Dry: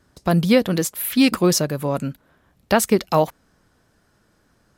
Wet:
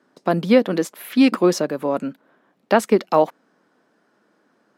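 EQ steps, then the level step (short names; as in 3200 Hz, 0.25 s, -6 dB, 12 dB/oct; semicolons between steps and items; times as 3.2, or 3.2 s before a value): HPF 220 Hz 24 dB/oct; LPF 1800 Hz 6 dB/oct; +2.5 dB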